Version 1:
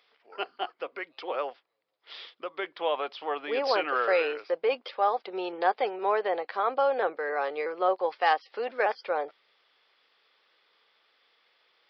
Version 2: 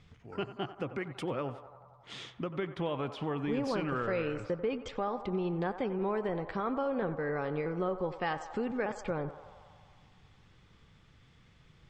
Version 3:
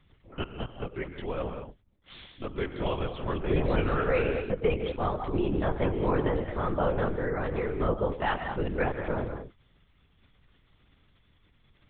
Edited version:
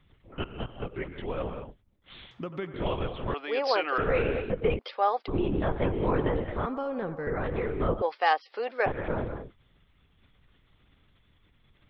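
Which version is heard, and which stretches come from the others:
3
2.31–2.74 from 2
3.34–3.98 from 1
4.79–5.28 from 1
6.66–7.27 from 2
8.02–8.86 from 1

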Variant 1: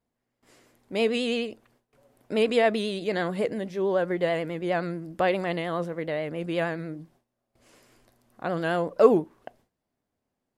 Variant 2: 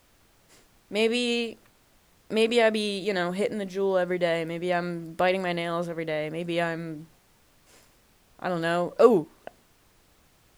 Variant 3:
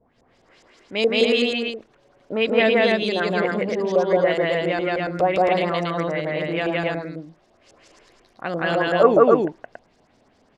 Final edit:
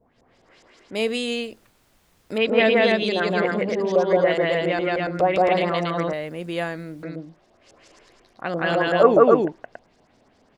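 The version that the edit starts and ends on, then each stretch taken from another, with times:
3
0.95–2.38 from 2
6.13–7.03 from 2
not used: 1

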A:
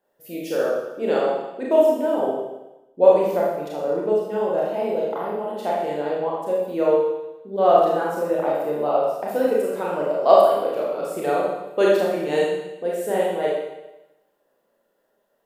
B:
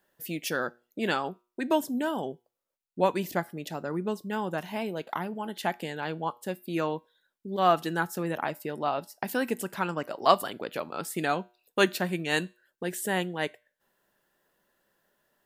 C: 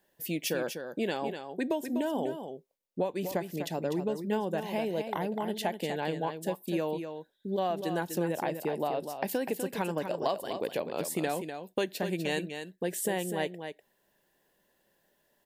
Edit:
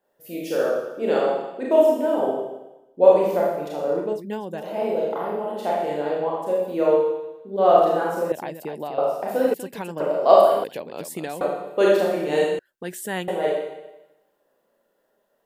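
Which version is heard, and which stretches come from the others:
A
4.11–4.7 from C, crossfade 0.24 s
8.32–8.98 from C
9.54–10 from C
10.64–11.41 from C
12.59–13.28 from B

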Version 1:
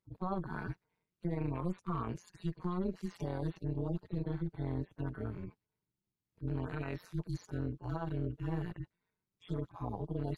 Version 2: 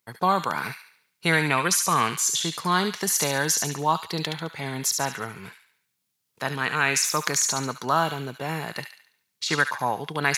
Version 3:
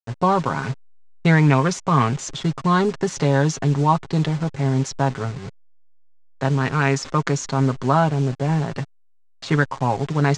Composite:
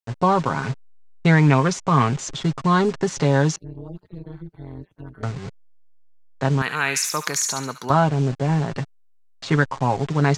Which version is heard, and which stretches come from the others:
3
3.56–5.23 from 1
6.62–7.9 from 2

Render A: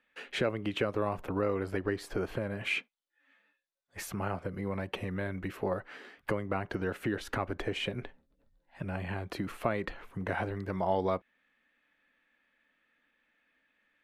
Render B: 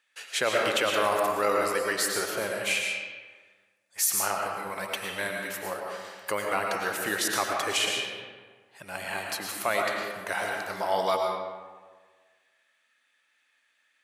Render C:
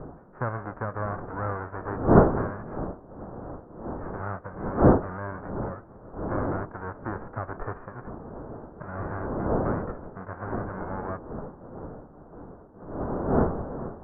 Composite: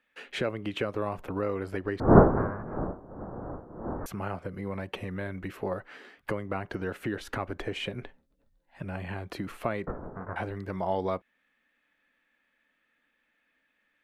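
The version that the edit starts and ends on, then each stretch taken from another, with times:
A
2–4.06 from C
9.87–10.36 from C
not used: B

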